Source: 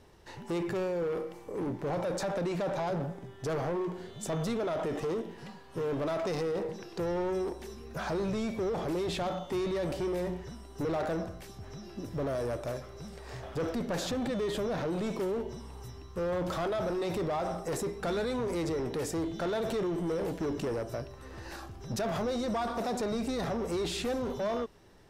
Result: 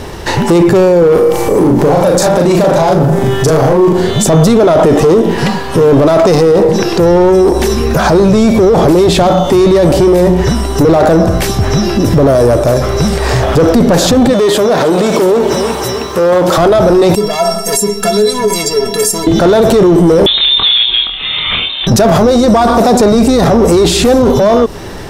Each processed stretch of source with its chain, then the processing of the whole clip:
1.13–3.93 high shelf 6500 Hz +6 dB + doubler 38 ms -2 dB
14.33–16.58 HPF 490 Hz 6 dB/oct + lo-fi delay 0.312 s, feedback 55%, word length 11-bit, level -13.5 dB
17.15–19.27 tone controls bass -2 dB, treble +14 dB + metallic resonator 200 Hz, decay 0.28 s, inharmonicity 0.03
20.26–21.87 steep high-pass 170 Hz 72 dB/oct + inverted band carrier 3900 Hz + doubler 25 ms -6 dB
whole clip: dynamic EQ 2200 Hz, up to -6 dB, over -50 dBFS, Q 0.76; maximiser +35 dB; gain -1 dB

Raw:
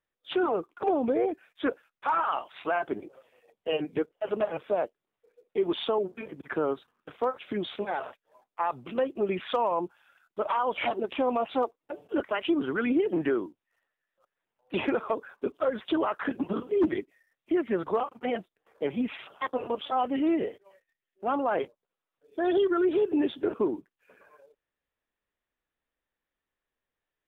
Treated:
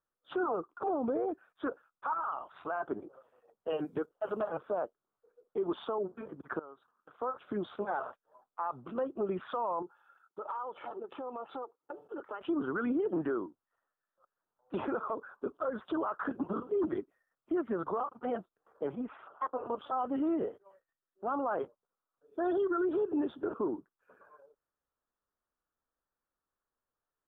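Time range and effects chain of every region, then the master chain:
2.13–2.7 low shelf 150 Hz +7 dB + compressor 5:1, threshold -33 dBFS
3.7–4.49 high shelf 2900 Hz +10.5 dB + mismatched tape noise reduction decoder only
6.59–7.2 low shelf 420 Hz -9 dB + compressor 2.5:1, threshold -52 dBFS
9.82–12.41 HPF 150 Hz + comb 2.3 ms, depth 39% + compressor, threshold -35 dBFS
18.95–19.66 LPF 2100 Hz + bell 140 Hz -10 dB 1.8 oct
whole clip: resonant high shelf 1700 Hz -8.5 dB, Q 3; limiter -21 dBFS; gain -4 dB

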